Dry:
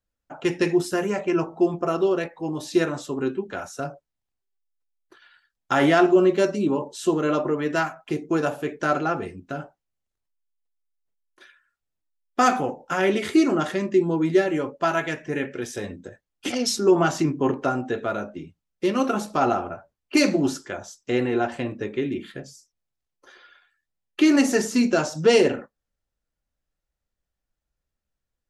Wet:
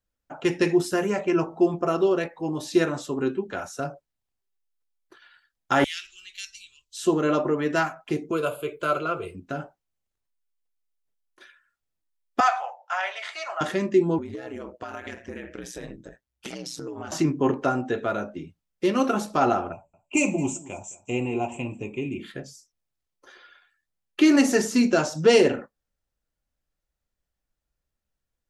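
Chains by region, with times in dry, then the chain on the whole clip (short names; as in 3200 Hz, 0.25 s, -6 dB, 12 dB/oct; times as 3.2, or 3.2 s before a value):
5.84–6.97 inverse Chebyshev band-stop 150–910 Hz, stop band 60 dB + bell 180 Hz +9 dB 0.27 oct
8.31–9.35 high shelf 5900 Hz +11.5 dB + fixed phaser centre 1200 Hz, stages 8
12.4–13.61 Chebyshev high-pass 640 Hz, order 5 + air absorption 110 m
14.18–17.12 ring modulator 62 Hz + compressor 12:1, threshold -31 dBFS
19.72–22.2 EQ curve 160 Hz 0 dB, 280 Hz -4 dB, 520 Hz -7 dB, 950 Hz +1 dB, 1700 Hz -27 dB, 2500 Hz +6 dB, 4500 Hz -26 dB, 7500 Hz +11 dB, 12000 Hz -25 dB + echo 0.215 s -20 dB
whole clip: dry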